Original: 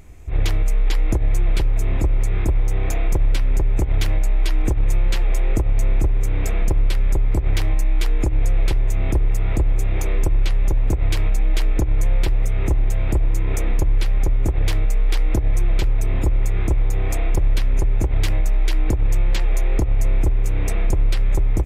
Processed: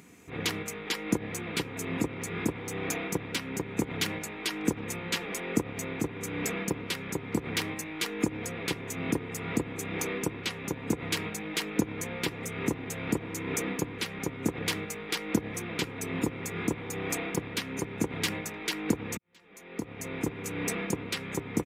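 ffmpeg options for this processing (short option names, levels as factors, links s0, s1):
-filter_complex "[0:a]asplit=2[s0][s1];[s0]atrim=end=19.17,asetpts=PTS-STARTPTS,afade=t=out:st=19.166:d=0.004:c=hsin[s2];[s1]atrim=start=19.17,asetpts=PTS-STARTPTS,afade=t=in:d=1.01:c=qua[s3];[s2][s3]concat=n=2:v=0:a=1,highpass=f=150:w=0.5412,highpass=f=150:w=1.3066,equalizer=f=650:w=2.2:g=-9.5,aecho=1:1:4.2:0.35"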